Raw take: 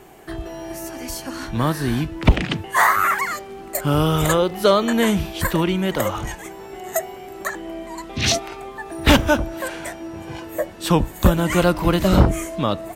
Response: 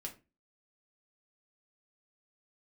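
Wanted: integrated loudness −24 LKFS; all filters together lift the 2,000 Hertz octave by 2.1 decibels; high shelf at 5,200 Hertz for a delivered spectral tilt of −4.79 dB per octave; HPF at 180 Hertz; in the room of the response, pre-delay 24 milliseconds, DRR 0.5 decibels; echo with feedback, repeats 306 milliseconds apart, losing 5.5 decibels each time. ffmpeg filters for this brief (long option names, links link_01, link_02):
-filter_complex "[0:a]highpass=180,equalizer=frequency=2000:width_type=o:gain=3,highshelf=frequency=5200:gain=-3.5,aecho=1:1:306|612|918|1224|1530|1836|2142:0.531|0.281|0.149|0.079|0.0419|0.0222|0.0118,asplit=2[link_01][link_02];[1:a]atrim=start_sample=2205,adelay=24[link_03];[link_02][link_03]afir=irnorm=-1:irlink=0,volume=2dB[link_04];[link_01][link_04]amix=inputs=2:normalize=0,volume=-6.5dB"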